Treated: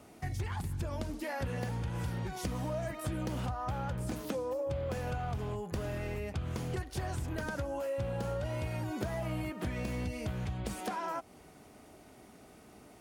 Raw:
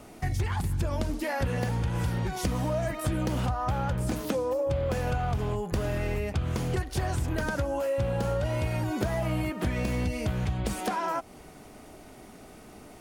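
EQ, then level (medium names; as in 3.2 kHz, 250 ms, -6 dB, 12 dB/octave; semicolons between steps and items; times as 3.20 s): high-pass 49 Hz; -7.0 dB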